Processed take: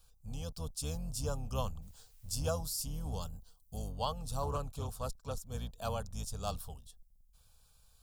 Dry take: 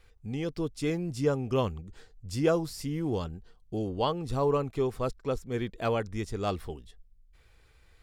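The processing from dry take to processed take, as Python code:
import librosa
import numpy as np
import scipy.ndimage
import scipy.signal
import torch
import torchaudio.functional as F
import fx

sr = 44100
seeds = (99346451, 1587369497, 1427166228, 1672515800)

y = fx.octave_divider(x, sr, octaves=2, level_db=1.0)
y = librosa.effects.preemphasis(y, coef=0.8, zi=[0.0])
y = fx.fixed_phaser(y, sr, hz=840.0, stages=4)
y = fx.dmg_noise_colour(y, sr, seeds[0], colour='blue', level_db=-75.0, at=(1.81, 2.3), fade=0.02)
y = fx.high_shelf(y, sr, hz=7600.0, db=10.0, at=(3.22, 3.92))
y = fx.doppler_dist(y, sr, depth_ms=0.18, at=(4.42, 5.45))
y = y * 10.0 ** (7.0 / 20.0)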